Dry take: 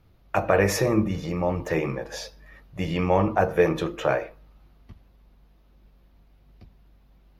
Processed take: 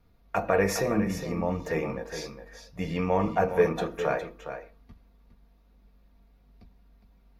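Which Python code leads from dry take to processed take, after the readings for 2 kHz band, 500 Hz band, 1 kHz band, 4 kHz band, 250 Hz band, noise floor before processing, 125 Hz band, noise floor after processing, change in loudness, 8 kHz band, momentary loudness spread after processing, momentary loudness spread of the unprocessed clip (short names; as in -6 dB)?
-3.5 dB, -3.0 dB, -3.0 dB, -4.5 dB, -3.5 dB, -58 dBFS, -5.5 dB, -60 dBFS, -3.5 dB, -3.5 dB, 16 LU, 14 LU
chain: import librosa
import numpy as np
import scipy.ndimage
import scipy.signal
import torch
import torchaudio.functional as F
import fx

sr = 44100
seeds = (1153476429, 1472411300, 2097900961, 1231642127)

y = fx.peak_eq(x, sr, hz=3000.0, db=-5.0, octaves=0.25)
y = y + 0.44 * np.pad(y, (int(4.3 * sr / 1000.0), 0))[:len(y)]
y = fx.vibrato(y, sr, rate_hz=2.7, depth_cents=20.0)
y = y + 10.0 ** (-10.0 / 20.0) * np.pad(y, (int(411 * sr / 1000.0), 0))[:len(y)]
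y = y * librosa.db_to_amplitude(-4.5)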